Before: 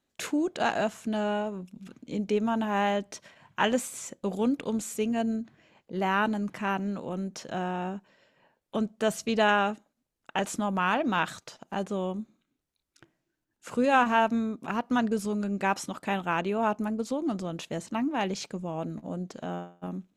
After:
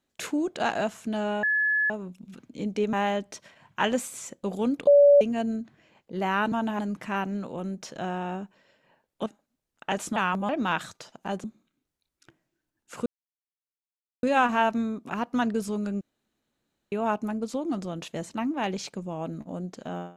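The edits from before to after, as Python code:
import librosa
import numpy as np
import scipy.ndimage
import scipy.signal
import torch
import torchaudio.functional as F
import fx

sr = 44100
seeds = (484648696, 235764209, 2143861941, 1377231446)

y = fx.edit(x, sr, fx.insert_tone(at_s=1.43, length_s=0.47, hz=1710.0, db=-21.0),
    fx.move(start_s=2.46, length_s=0.27, to_s=6.32),
    fx.bleep(start_s=4.67, length_s=0.34, hz=573.0, db=-12.0),
    fx.cut(start_s=8.79, length_s=0.94),
    fx.reverse_span(start_s=10.63, length_s=0.33),
    fx.cut(start_s=11.91, length_s=0.27),
    fx.insert_silence(at_s=13.8, length_s=1.17),
    fx.room_tone_fill(start_s=15.58, length_s=0.91), tone=tone)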